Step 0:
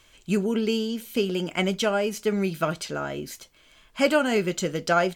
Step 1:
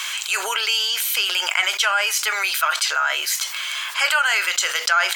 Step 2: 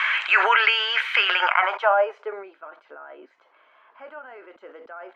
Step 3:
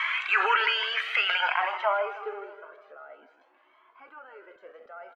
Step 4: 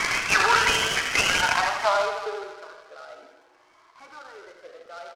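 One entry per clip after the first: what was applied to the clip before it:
inverse Chebyshev high-pass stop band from 170 Hz, stop band 80 dB; dynamic bell 1.6 kHz, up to +4 dB, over -39 dBFS, Q 2.4; level flattener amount 70%; trim +3 dB
tone controls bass -13 dB, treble -11 dB; low-pass sweep 1.9 kHz -> 260 Hz, 1.30–2.54 s; loudness maximiser +9.5 dB; trim -4 dB
feedback delay 158 ms, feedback 56%, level -12 dB; Shepard-style flanger rising 0.53 Hz; trim -1.5 dB
on a send: feedback delay 82 ms, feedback 55%, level -7 dB; on the sum: delay time shaken by noise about 2.8 kHz, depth 0.037 ms; trim +3 dB

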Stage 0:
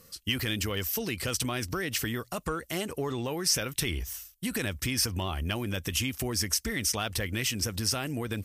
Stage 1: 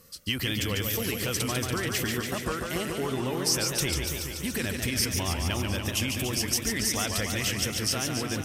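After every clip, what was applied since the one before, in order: modulated delay 143 ms, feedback 76%, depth 143 cents, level -5 dB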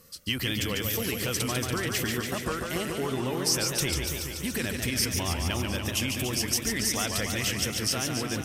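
hum notches 50/100 Hz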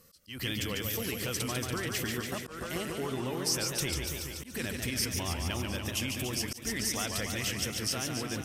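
slow attack 165 ms; trim -4.5 dB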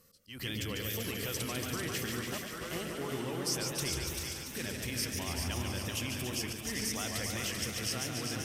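two-band feedback delay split 690 Hz, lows 102 ms, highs 390 ms, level -5 dB; trim -4 dB

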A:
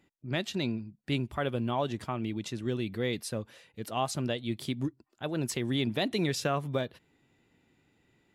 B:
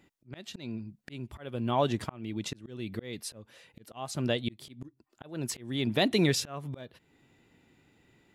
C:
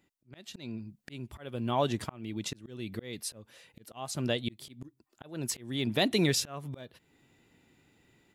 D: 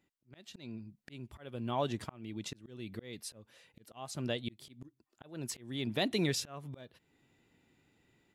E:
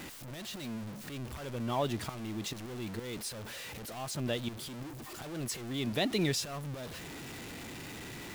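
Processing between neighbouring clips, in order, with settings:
slow attack 453 ms; trim +4.5 dB
treble shelf 5 kHz +5.5 dB; level rider gain up to 7 dB; trim -8.5 dB
treble shelf 8.5 kHz -4.5 dB; trim -5 dB
jump at every zero crossing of -38.5 dBFS

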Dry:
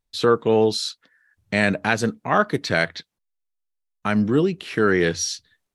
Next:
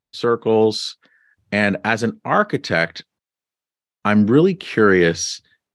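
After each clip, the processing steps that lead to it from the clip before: high-pass 92 Hz; treble shelf 7.3 kHz -10.5 dB; level rider gain up to 13.5 dB; trim -1 dB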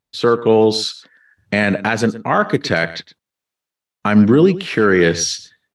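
peak limiter -7.5 dBFS, peak gain reduction 5.5 dB; delay 115 ms -16.5 dB; trim +4.5 dB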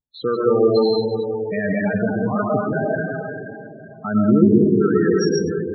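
algorithmic reverb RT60 3.2 s, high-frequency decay 0.45×, pre-delay 70 ms, DRR -4 dB; vibrato 0.35 Hz 25 cents; loudest bins only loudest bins 16; trim -7.5 dB

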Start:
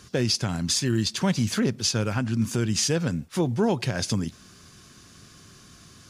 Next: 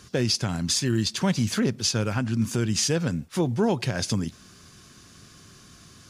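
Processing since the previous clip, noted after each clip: no audible change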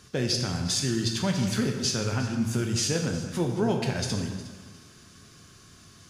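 echo whose repeats swap between lows and highs 180 ms, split 1.5 kHz, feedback 50%, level -10.5 dB; plate-style reverb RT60 1.1 s, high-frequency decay 0.9×, DRR 2.5 dB; trim -4 dB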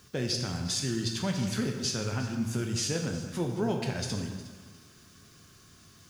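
added noise blue -64 dBFS; trim -4 dB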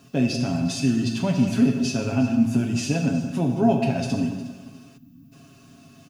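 comb 7.3 ms; small resonant body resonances 240/650/2600 Hz, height 17 dB, ringing for 25 ms; time-frequency box 4.98–5.32 s, 320–12000 Hz -19 dB; trim -3 dB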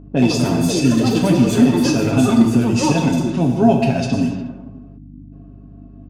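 ever faster or slower copies 110 ms, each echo +5 st, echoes 3, each echo -6 dB; level-controlled noise filter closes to 490 Hz, open at -19 dBFS; mains buzz 50 Hz, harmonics 6, -46 dBFS -3 dB/octave; trim +6 dB

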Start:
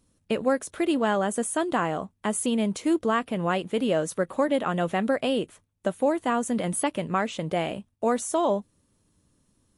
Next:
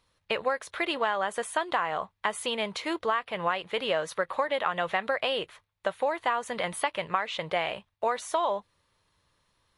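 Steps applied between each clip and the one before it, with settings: graphic EQ 250/500/1000/2000/4000/8000 Hz -12/+4/+10/+10/+11/-6 dB; compression 10:1, threshold -17 dBFS, peak gain reduction 9.5 dB; trim -5.5 dB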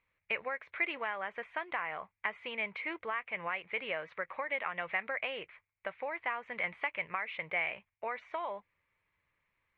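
four-pole ladder low-pass 2.4 kHz, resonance 75%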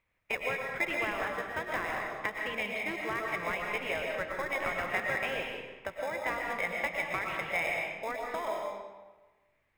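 in parallel at -8 dB: sample-and-hold 30×; on the sum: reverberation RT60 1.2 s, pre-delay 80 ms, DRR 0 dB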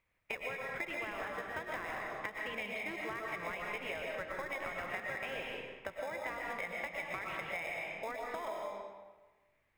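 compression, threshold -35 dBFS, peak gain reduction 9 dB; trim -1.5 dB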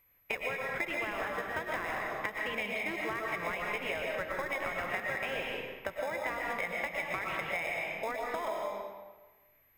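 whistle 12 kHz -71 dBFS; trim +5 dB

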